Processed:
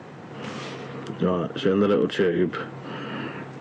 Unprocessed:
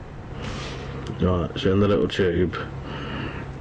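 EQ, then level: dynamic EQ 4900 Hz, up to -4 dB, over -48 dBFS, Q 0.73; HPF 150 Hz 24 dB/oct; 0.0 dB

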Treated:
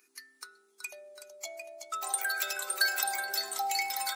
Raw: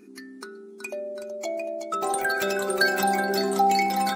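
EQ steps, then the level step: HPF 820 Hz 12 dB/oct; tilt +3 dB/oct; -8.0 dB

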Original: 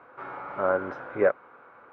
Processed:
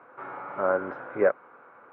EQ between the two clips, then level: BPF 120–2600 Hz; 0.0 dB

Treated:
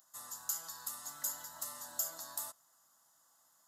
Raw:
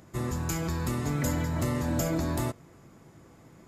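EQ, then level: tone controls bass -11 dB, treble -4 dB; differentiator; fixed phaser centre 970 Hz, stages 4; +4.5 dB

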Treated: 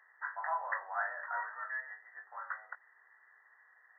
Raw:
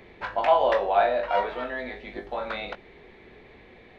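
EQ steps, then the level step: HPF 1200 Hz 24 dB/oct; brick-wall FIR low-pass 2000 Hz; -3.0 dB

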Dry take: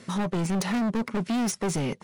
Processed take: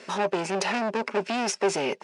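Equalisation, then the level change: speaker cabinet 330–8900 Hz, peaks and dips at 400 Hz +8 dB, 610 Hz +7 dB, 870 Hz +7 dB, 1600 Hz +6 dB, 2600 Hz +10 dB, 5100 Hz +6 dB; 0.0 dB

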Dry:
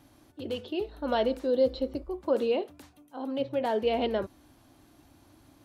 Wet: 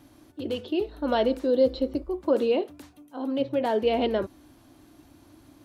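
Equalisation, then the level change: bell 310 Hz +4.5 dB 0.57 oct; notch 810 Hz, Q 25; +2.5 dB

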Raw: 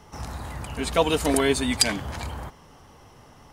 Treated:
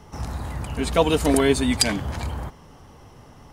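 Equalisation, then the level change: low shelf 480 Hz +5.5 dB; 0.0 dB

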